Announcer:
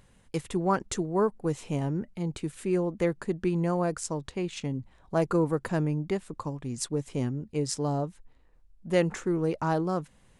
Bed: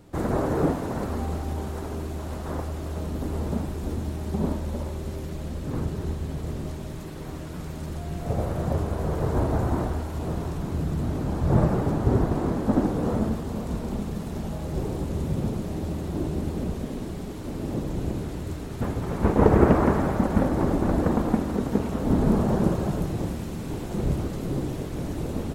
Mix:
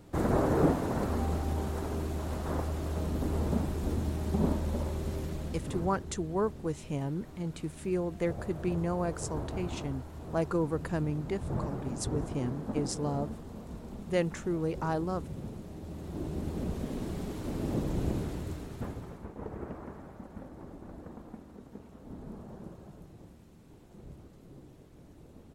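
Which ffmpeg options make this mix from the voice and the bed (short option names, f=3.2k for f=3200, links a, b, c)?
-filter_complex "[0:a]adelay=5200,volume=-4.5dB[a];[1:a]volume=9dB,afade=t=out:st=5.2:d=0.85:silence=0.266073,afade=t=in:st=15.82:d=1.37:silence=0.281838,afade=t=out:st=18.14:d=1.13:silence=0.0891251[b];[a][b]amix=inputs=2:normalize=0"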